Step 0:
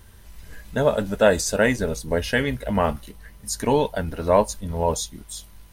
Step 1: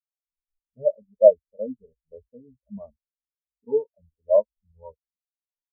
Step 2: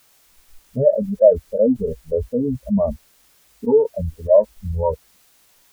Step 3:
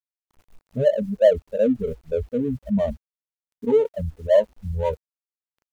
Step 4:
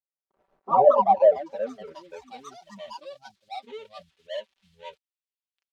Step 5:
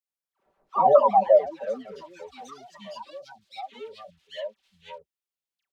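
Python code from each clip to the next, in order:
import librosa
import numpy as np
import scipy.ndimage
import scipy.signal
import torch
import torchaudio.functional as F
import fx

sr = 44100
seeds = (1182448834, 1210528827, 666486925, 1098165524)

y1 = scipy.signal.sosfilt(scipy.signal.butter(16, 1400.0, 'lowpass', fs=sr, output='sos'), x)
y1 = fx.spectral_expand(y1, sr, expansion=4.0)
y1 = F.gain(torch.from_numpy(y1), 3.0).numpy()
y2 = fx.env_flatten(y1, sr, amount_pct=70)
y3 = scipy.signal.medfilt(y2, 25)
y3 = F.gain(torch.from_numpy(y3), -3.0).numpy()
y4 = fx.filter_sweep_bandpass(y3, sr, from_hz=510.0, to_hz=3300.0, start_s=0.89, end_s=2.55, q=1.9)
y4 = fx.echo_pitch(y4, sr, ms=98, semitones=4, count=3, db_per_echo=-3.0)
y4 = y4 + 0.53 * np.pad(y4, (int(5.2 * sr / 1000.0), 0))[:len(y4)]
y5 = fx.dispersion(y4, sr, late='lows', ms=94.0, hz=1200.0)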